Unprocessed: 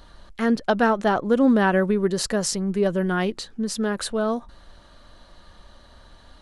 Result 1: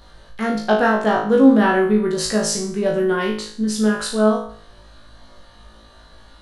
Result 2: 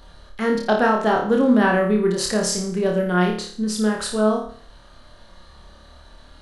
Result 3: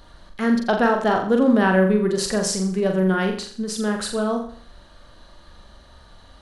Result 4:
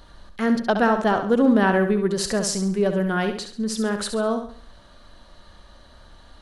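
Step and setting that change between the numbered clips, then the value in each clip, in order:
flutter echo, walls apart: 3.2, 4.8, 7.3, 11.7 m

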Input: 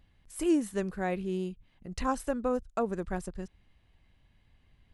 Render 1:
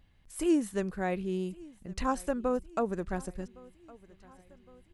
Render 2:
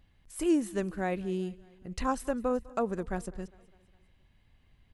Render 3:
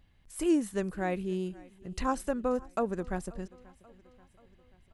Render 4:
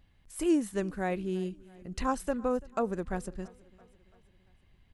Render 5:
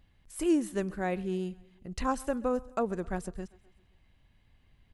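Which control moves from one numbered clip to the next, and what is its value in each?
feedback echo, time: 1.112, 0.202, 0.534, 0.337, 0.131 s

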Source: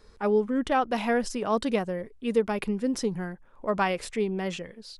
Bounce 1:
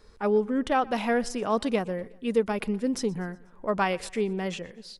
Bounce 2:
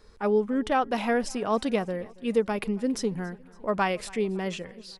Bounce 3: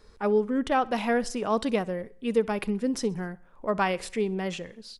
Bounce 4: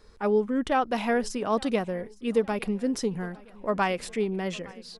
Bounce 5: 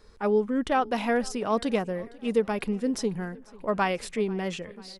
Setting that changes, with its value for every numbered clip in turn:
feedback echo, time: 122, 279, 64, 861, 491 ms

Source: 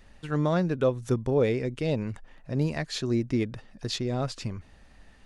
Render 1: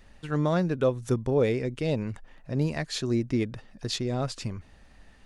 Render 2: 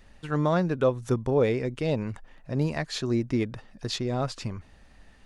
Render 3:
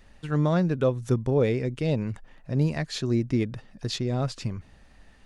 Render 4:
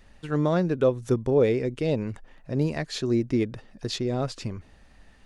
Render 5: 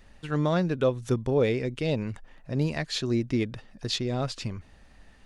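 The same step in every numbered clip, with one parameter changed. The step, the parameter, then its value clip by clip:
dynamic EQ, frequency: 9400, 1000, 140, 390, 3300 Hz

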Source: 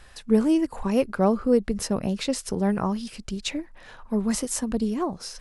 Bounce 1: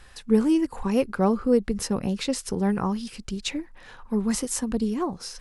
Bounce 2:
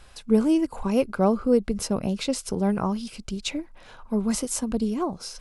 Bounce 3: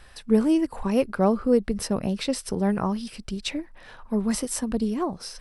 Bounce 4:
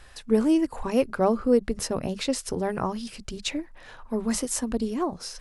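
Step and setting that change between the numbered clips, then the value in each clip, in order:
notch, frequency: 630, 1800, 6800, 200 Hz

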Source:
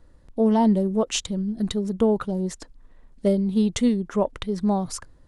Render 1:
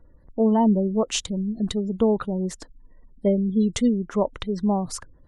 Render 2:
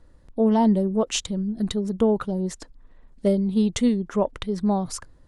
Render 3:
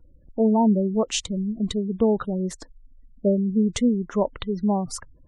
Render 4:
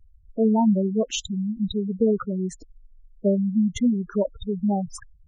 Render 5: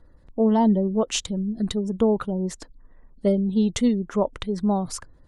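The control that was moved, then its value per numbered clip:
spectral gate, under each frame's peak: -35, -60, -25, -10, -45 dB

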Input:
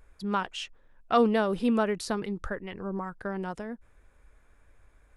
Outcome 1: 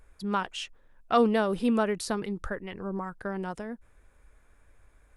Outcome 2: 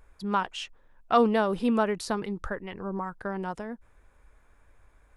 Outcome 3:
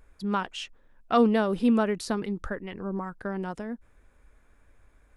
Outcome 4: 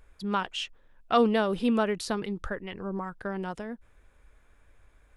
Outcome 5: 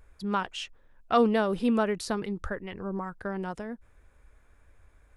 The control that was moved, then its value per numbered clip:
bell, frequency: 9700, 940, 250, 3200, 77 Hz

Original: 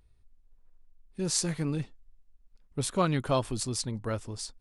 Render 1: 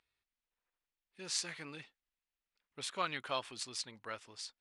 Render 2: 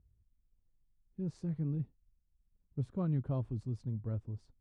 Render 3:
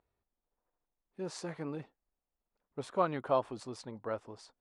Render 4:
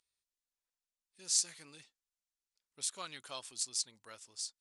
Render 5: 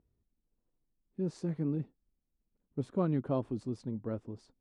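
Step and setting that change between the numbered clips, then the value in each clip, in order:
band-pass, frequency: 2500, 100, 760, 6700, 260 Hz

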